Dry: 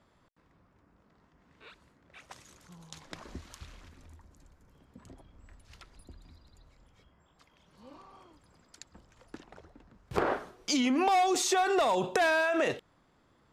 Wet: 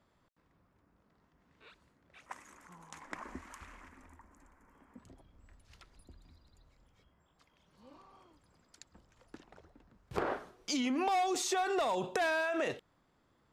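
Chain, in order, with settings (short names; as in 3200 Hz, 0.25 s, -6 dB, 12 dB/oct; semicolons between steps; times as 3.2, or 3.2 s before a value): 2.26–4.99 graphic EQ 125/250/1000/2000/4000/8000 Hz -10/+8/+10/+10/-10/+5 dB; gain -5.5 dB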